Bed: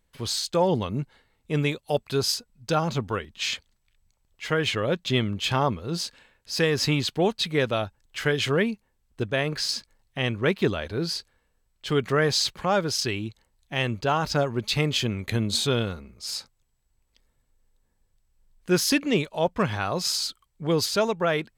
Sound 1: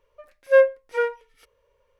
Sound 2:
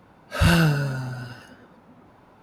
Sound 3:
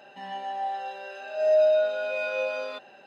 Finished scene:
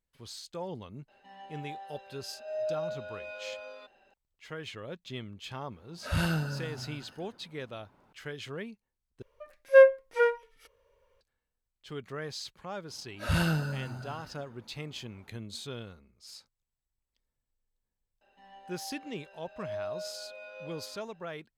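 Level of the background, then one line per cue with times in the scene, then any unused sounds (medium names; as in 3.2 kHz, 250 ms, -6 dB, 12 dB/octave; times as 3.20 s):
bed -16.5 dB
1.08 s: add 3 -13 dB
5.71 s: add 2 -11 dB
9.22 s: replace with 1 -1.5 dB
12.88 s: add 2 -9.5 dB
18.21 s: add 3 -17 dB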